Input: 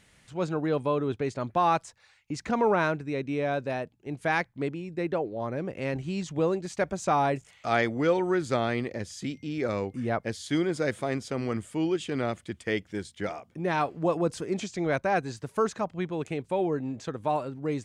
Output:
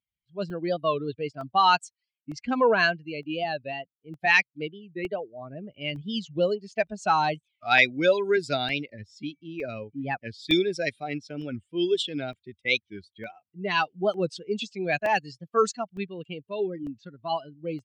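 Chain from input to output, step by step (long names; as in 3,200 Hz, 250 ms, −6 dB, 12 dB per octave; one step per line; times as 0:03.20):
spectral dynamics exaggerated over time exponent 2
meter weighting curve D
low-pass that shuts in the quiet parts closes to 1,100 Hz, open at −23.5 dBFS
gain on a spectral selection 0:16.41–0:17.32, 400–1,000 Hz −8 dB
pitch shifter +1.5 semitones
regular buffer underruns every 0.91 s, samples 64, zero, from 0:00.50
wow of a warped record 45 rpm, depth 160 cents
level +6 dB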